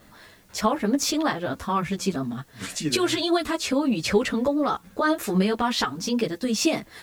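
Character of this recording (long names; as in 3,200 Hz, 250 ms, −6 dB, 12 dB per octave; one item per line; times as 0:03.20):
a quantiser's noise floor 10 bits, dither triangular
a shimmering, thickened sound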